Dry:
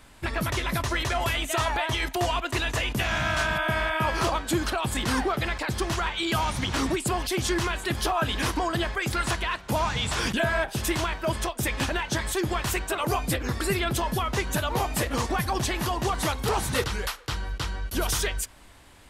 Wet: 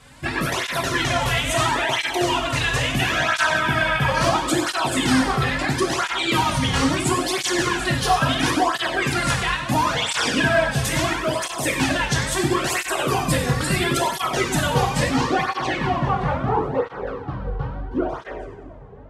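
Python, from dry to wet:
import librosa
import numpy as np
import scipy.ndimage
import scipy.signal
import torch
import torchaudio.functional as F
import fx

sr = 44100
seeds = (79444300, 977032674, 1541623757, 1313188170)

p1 = fx.filter_sweep_lowpass(x, sr, from_hz=10000.0, to_hz=800.0, start_s=14.59, end_s=16.67, q=0.85)
p2 = p1 + fx.echo_split(p1, sr, split_hz=1200.0, low_ms=344, high_ms=94, feedback_pct=52, wet_db=-14.0, dry=0)
p3 = fx.rev_double_slope(p2, sr, seeds[0], early_s=0.74, late_s=3.5, knee_db=-22, drr_db=-0.5)
p4 = fx.flanger_cancel(p3, sr, hz=0.74, depth_ms=3.4)
y = F.gain(torch.from_numpy(p4), 6.0).numpy()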